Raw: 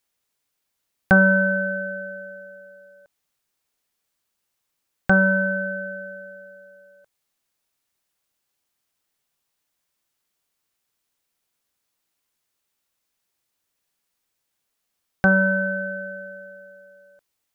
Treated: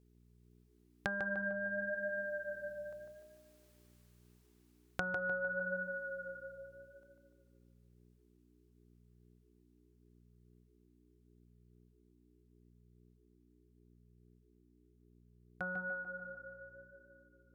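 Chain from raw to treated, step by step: Doppler pass-by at 3.53, 16 m/s, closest 10 m; low shelf 230 Hz -10.5 dB; compressor 12:1, threshold -41 dBFS, peak gain reduction 19 dB; buzz 60 Hz, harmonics 7, -73 dBFS -4 dB/oct; on a send: tape echo 0.149 s, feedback 59%, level -4 dB, low-pass 2000 Hz; on the sum: gain +5.5 dB

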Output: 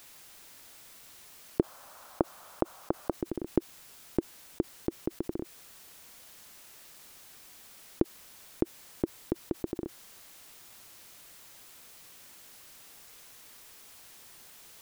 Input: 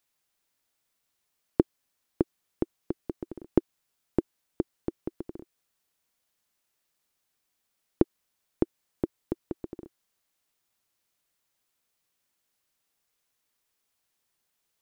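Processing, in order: 1.6–3.13 band shelf 880 Hz +13 dB; fast leveller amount 50%; gain -4.5 dB

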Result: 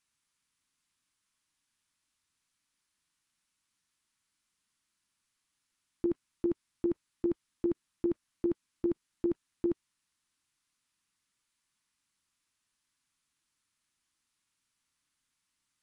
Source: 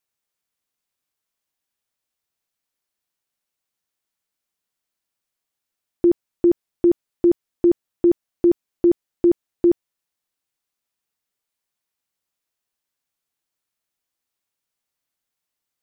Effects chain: band shelf 550 Hz -10 dB 1.3 oct; level quantiser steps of 17 dB; gain +5.5 dB; AAC 96 kbps 24000 Hz

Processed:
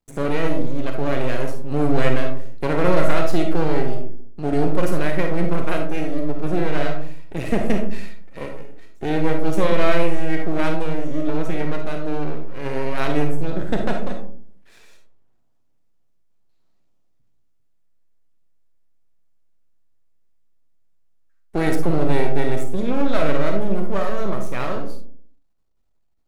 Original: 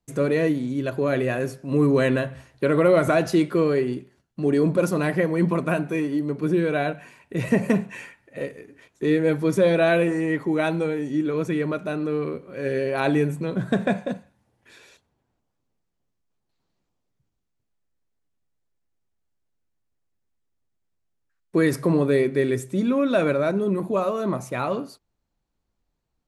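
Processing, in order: half-wave rectifier; digital reverb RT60 0.52 s, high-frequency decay 0.3×, pre-delay 10 ms, DRR 3.5 dB; gain +1 dB

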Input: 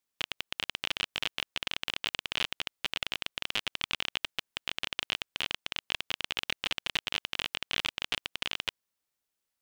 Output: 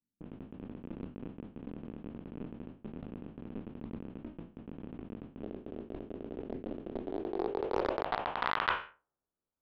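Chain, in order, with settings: spectral trails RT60 0.38 s; low-pass opened by the level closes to 350 Hz, open at -31.5 dBFS; 5.42–8.03 fifteen-band EQ 160 Hz -5 dB, 400 Hz +11 dB, 6300 Hz +9 dB; low-pass sweep 240 Hz -> 1400 Hz, 6.91–8.86; bell 1400 Hz +6.5 dB 2.9 oct; notch 2000 Hz, Q 15; Doppler distortion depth 0.52 ms; gain +2 dB

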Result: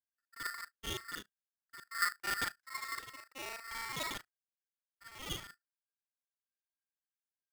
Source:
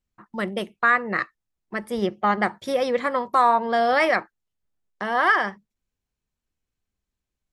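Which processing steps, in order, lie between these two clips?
local time reversal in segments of 36 ms; passive tone stack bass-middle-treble 10-0-1; expander -41 dBFS; low-pass opened by the level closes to 960 Hz, open at -48 dBFS; polarity switched at an audio rate 1600 Hz; gain +11.5 dB

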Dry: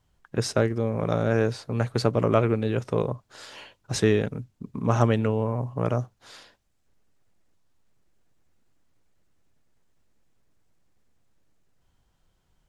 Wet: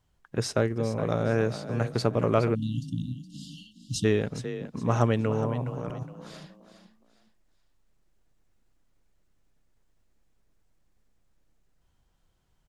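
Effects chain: 5.62–6.03 negative-ratio compressor -33 dBFS, ratio -1; frequency-shifting echo 0.416 s, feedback 33%, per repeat +32 Hz, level -11.5 dB; 2.55–4.05 spectral delete 320–2700 Hz; gain -2.5 dB

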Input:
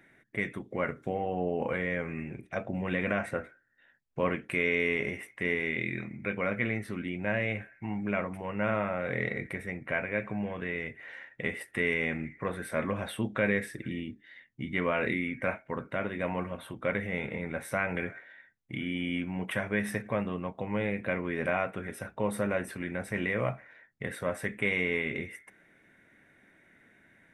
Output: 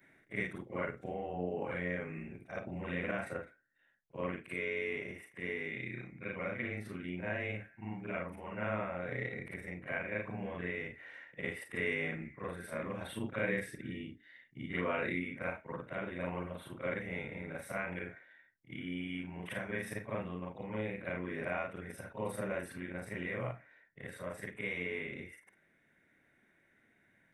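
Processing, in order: short-time reversal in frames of 0.112 s; vocal rider 2 s; gain -4.5 dB

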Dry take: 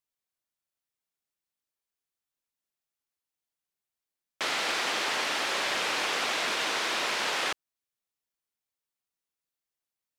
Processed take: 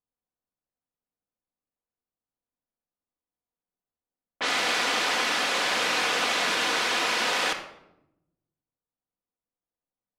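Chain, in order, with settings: low-pass opened by the level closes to 890 Hz, open at -26 dBFS; shoebox room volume 2700 m³, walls furnished, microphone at 1.9 m; gain +2.5 dB

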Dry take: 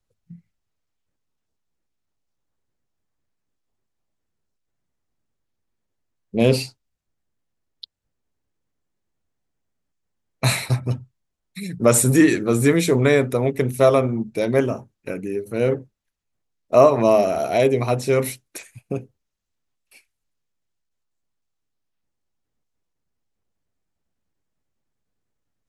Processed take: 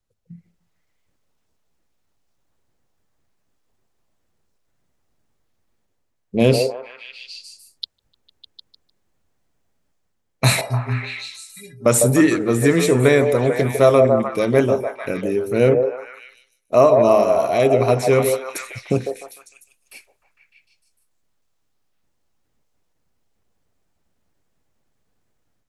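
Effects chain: 10.61–11.86 metallic resonator 120 Hz, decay 0.37 s, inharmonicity 0.03; delay with a stepping band-pass 0.151 s, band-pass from 590 Hz, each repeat 0.7 oct, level -2 dB; AGC gain up to 10 dB; gain -1 dB

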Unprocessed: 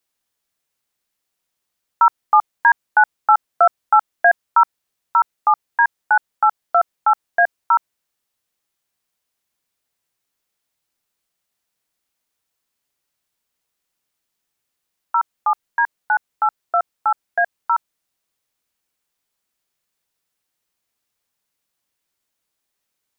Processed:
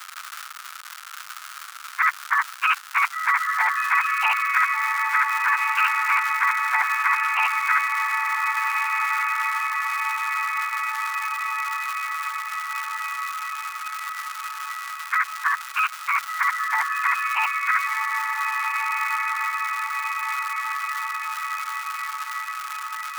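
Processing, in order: inharmonic rescaling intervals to 123%; crackle 330/s -36 dBFS; ladder high-pass 1200 Hz, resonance 75%; on a send: diffused feedback echo 1.529 s, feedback 50%, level -13 dB; on the sum: spectral compressor 4:1

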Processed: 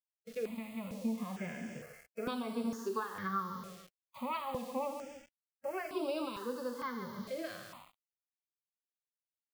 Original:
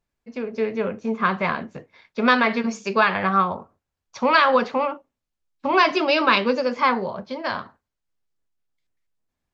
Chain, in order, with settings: low shelf 130 Hz -4.5 dB; feedback echo 0.141 s, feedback 34%, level -14 dB; compressor 16:1, threshold -30 dBFS, peak gain reduction 19 dB; echo 80 ms -16 dB; bit-crush 8-bit; gate with hold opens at -38 dBFS; harmonic-percussive split percussive -18 dB; step phaser 2.2 Hz 250–6400 Hz; gain +1 dB

